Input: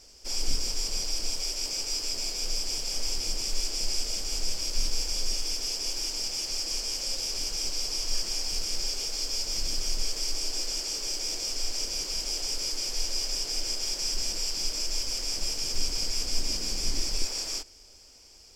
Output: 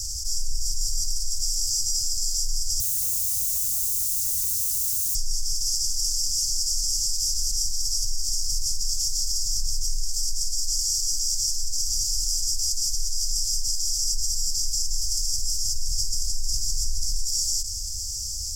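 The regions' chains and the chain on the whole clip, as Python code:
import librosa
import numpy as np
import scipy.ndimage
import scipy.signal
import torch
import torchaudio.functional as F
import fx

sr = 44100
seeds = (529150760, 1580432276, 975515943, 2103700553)

y = fx.chain(x, sr, fx.highpass_res(hz=2200.0, q=10.0),
    fx.high_shelf(hz=5600.0, db=-2.5),
    fx.overflow_wrap(gain_db=32.5), at=(2.8, 5.15))
y = scipy.signal.sosfilt(scipy.signal.cheby1(3, 1.0, [100.0, 6300.0], 'bandstop', fs=sr, output='sos'), y)
y = fx.env_flatten(y, sr, amount_pct=70)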